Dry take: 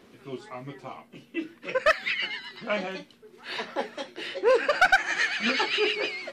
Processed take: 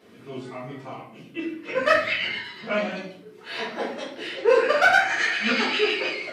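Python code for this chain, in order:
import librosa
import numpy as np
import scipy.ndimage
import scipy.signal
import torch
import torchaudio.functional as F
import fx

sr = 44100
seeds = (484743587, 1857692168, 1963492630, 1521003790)

y = fx.octave_divider(x, sr, octaves=1, level_db=-3.0, at=(1.75, 2.36))
y = scipy.signal.sosfilt(scipy.signal.butter(2, 70.0, 'highpass', fs=sr, output='sos'), y)
y = fx.room_shoebox(y, sr, seeds[0], volume_m3=84.0, walls='mixed', distance_m=1.7)
y = y * librosa.db_to_amplitude(-5.0)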